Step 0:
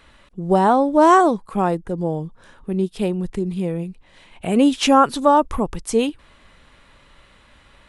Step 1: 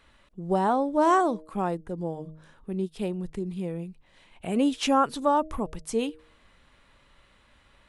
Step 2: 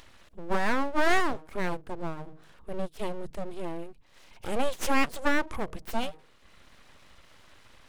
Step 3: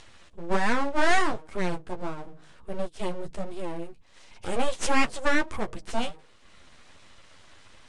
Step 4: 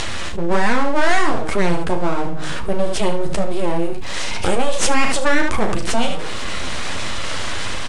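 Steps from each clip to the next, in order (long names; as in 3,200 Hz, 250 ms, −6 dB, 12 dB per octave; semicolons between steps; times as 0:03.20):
hum removal 156.4 Hz, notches 4; level −8.5 dB
upward compression, threshold −45 dBFS; full-wave rectification
Butterworth low-pass 9,700 Hz 48 dB per octave; flanger 1.4 Hz, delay 8.2 ms, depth 5 ms, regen −20%; high-shelf EQ 6,100 Hz +5.5 dB; level +5 dB
automatic gain control gain up to 6 dB; on a send: ambience of single reflections 35 ms −10 dB, 74 ms −11.5 dB; on the sum: envelope flattener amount 70%; level −1 dB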